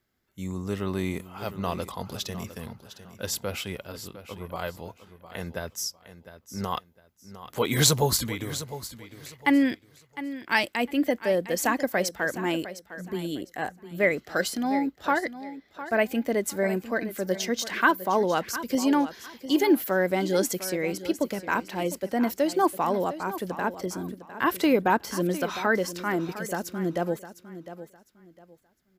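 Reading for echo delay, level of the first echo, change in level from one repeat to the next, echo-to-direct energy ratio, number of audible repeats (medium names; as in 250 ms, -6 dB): 706 ms, -13.5 dB, -12.0 dB, -13.0 dB, 2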